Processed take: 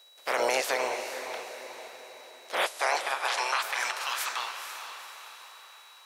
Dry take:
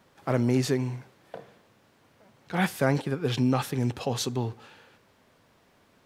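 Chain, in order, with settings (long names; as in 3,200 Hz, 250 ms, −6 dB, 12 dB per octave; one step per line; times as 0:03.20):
ceiling on every frequency bin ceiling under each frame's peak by 29 dB
in parallel at −1.5 dB: brickwall limiter −16 dBFS, peak gain reduction 8.5 dB
0:02.63–0:03.62: on the sum: linear-phase brick-wall band-pass 290–12,000 Hz
high-pass filter sweep 540 Hz → 1,300 Hz, 0:02.59–0:03.79
on a send: feedback delay with all-pass diffusion 473 ms, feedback 50%, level −8.5 dB
on the sum: steady tone 3,900 Hz −46 dBFS
level −8.5 dB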